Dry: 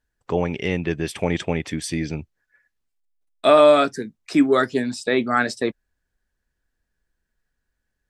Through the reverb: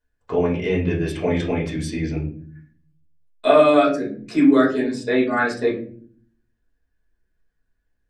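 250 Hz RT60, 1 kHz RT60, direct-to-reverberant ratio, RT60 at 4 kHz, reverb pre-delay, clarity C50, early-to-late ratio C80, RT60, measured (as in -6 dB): 0.85 s, 0.35 s, -5.0 dB, 0.30 s, 5 ms, 8.0 dB, 12.5 dB, 0.50 s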